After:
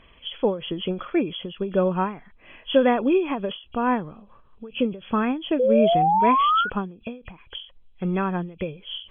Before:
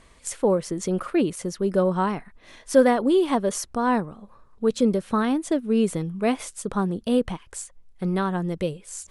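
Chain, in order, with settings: nonlinear frequency compression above 2300 Hz 4:1; painted sound rise, 5.59–6.7, 490–1500 Hz -19 dBFS; ending taper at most 140 dB/s

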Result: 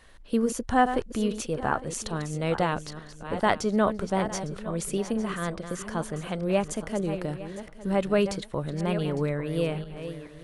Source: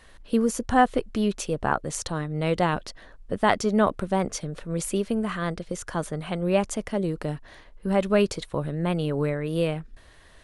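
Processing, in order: regenerating reverse delay 0.428 s, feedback 46%, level -10 dB; gain -2.5 dB

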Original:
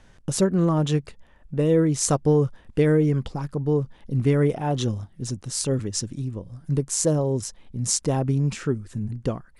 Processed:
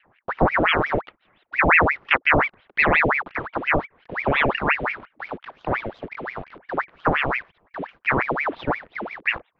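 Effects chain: LFO low-pass saw up 0.66 Hz 640–1600 Hz; in parallel at -7 dB: bit-crush 6-bit; on the sum: mistuned SSB -140 Hz 150–3200 Hz; ring modulator with a swept carrier 1300 Hz, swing 80%, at 5.7 Hz

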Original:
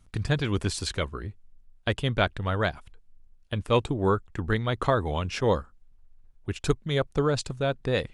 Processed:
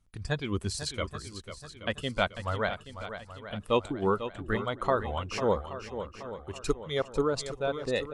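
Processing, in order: spectral noise reduction 9 dB; on a send: swung echo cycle 0.827 s, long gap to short 1.5:1, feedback 41%, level -10.5 dB; on the sum: gain -2.5 dB

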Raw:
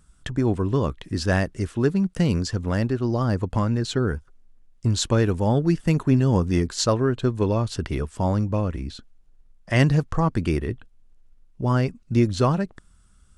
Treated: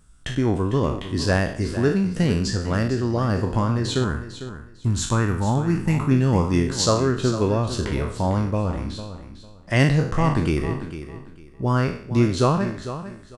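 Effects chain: spectral trails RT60 0.55 s; 4.04–6.11 ten-band EQ 500 Hz -9 dB, 1000 Hz +4 dB, 4000 Hz -9 dB; feedback echo 0.451 s, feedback 23%, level -12 dB

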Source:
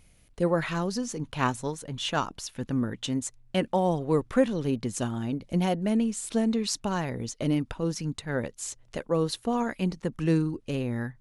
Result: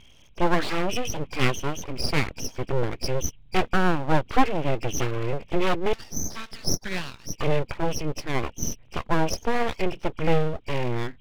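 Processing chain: nonlinear frequency compression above 2200 Hz 4:1; 5.93–7.33 HPF 790 Hz 24 dB/oct; full-wave rectifier; gain +6 dB

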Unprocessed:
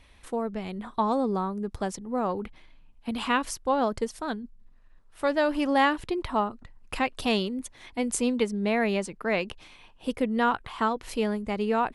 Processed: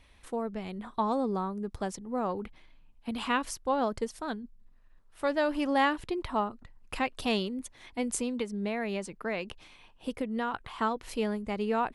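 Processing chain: 8.2–10.54 compressor, threshold -25 dBFS, peak gain reduction 6 dB; gain -3.5 dB

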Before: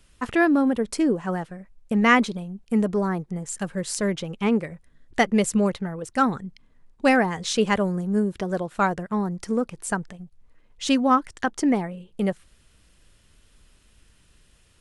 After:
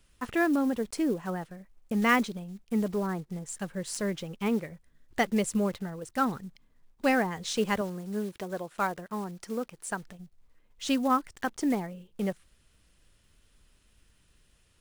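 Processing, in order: block floating point 5-bit; 7.81–10.03 low shelf 210 Hz -9 dB; gain -6.5 dB

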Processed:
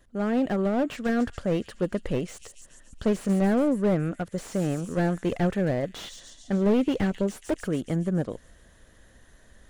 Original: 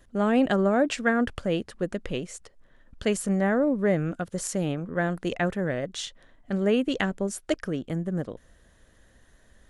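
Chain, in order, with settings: vocal rider within 5 dB 2 s; thin delay 0.14 s, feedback 63%, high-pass 5000 Hz, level -8.5 dB; slew limiter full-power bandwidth 45 Hz

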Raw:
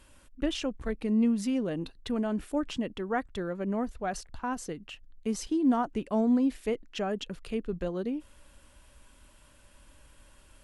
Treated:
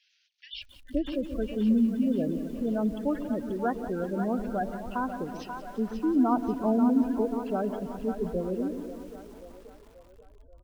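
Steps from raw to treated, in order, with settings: CVSD 32 kbps; high shelf 4100 Hz -9.5 dB; bands offset in time highs, lows 0.52 s, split 2200 Hz; dynamic EQ 1600 Hz, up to +4 dB, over -46 dBFS, Q 0.75; in parallel at -11.5 dB: soft clip -26 dBFS, distortion -12 dB; on the sum: spectral gate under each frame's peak -15 dB strong; on a send: split-band echo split 480 Hz, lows 0.129 s, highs 0.535 s, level -8 dB; on the sum: lo-fi delay 0.179 s, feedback 80%, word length 8-bit, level -13 dB

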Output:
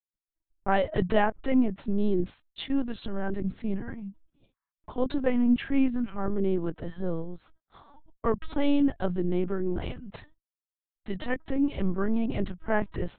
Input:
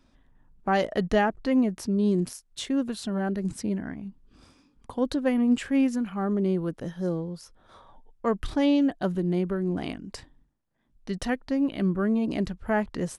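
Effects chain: gate -52 dBFS, range -57 dB; spectral repair 4.37–4.69, 800–2300 Hz before; LPC vocoder at 8 kHz pitch kept

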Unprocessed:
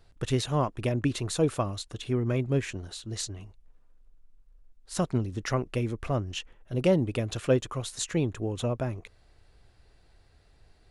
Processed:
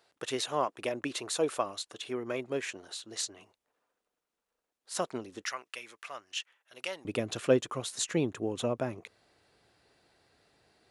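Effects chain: HPF 450 Hz 12 dB/oct, from 5.45 s 1400 Hz, from 7.05 s 200 Hz

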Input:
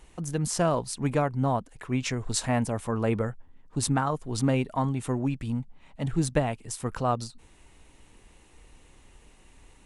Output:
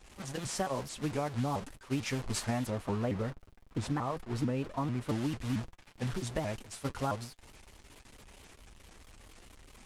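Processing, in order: delta modulation 64 kbps, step -30 dBFS; expander -27 dBFS; 2.7–5.09 high shelf 3500 Hz -11.5 dB; compressor 6:1, threshold -28 dBFS, peak gain reduction 9.5 dB; high shelf 10000 Hz -6 dB; notch comb 160 Hz; crackle 150/s -59 dBFS; shaped vibrato saw up 4.5 Hz, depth 250 cents

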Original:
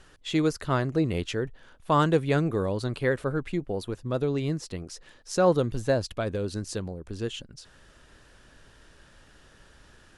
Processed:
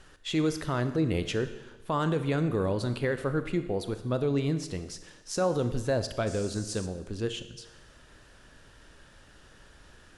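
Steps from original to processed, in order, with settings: limiter -19 dBFS, peak gain reduction 8.5 dB; Schroeder reverb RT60 1.1 s, combs from 25 ms, DRR 10 dB; 6.26–6.85 band noise 4500–8900 Hz -47 dBFS

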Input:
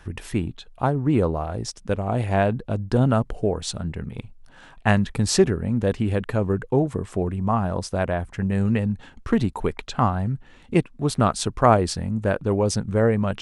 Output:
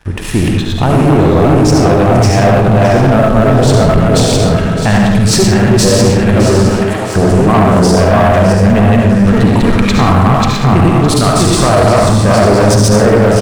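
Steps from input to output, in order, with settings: regenerating reverse delay 0.328 s, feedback 53%, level -1 dB; AGC gain up to 6.5 dB; harmonic-percussive split harmonic +4 dB; limiter -10 dBFS, peak gain reduction 11 dB; 6.69–7.16 HPF 1000 Hz 12 dB/oct; digital reverb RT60 0.8 s, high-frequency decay 0.85×, pre-delay 30 ms, DRR 0 dB; sample leveller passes 3; echo 0.612 s -13 dB

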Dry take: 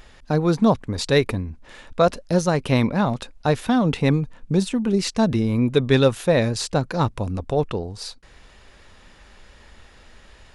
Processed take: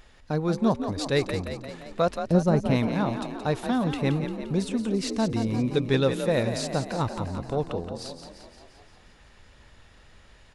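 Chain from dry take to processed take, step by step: 2.21–2.71 tilt shelf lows +7 dB, about 900 Hz; frequency-shifting echo 0.174 s, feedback 60%, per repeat +39 Hz, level -8.5 dB; gain -6.5 dB

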